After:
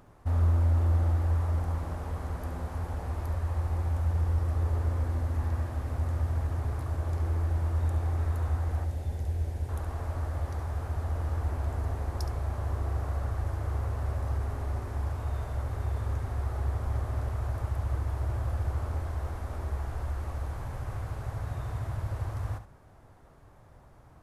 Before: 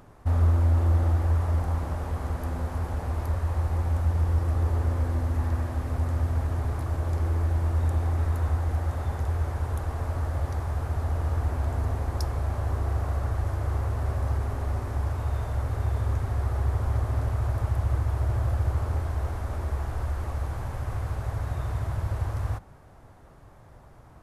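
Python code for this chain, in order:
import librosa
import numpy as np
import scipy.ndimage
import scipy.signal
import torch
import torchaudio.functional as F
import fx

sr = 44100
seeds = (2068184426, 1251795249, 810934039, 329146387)

p1 = fx.peak_eq(x, sr, hz=1200.0, db=-14.5, octaves=1.0, at=(8.84, 9.69))
p2 = p1 + fx.echo_single(p1, sr, ms=70, db=-11.0, dry=0)
y = p2 * 10.0 ** (-4.5 / 20.0)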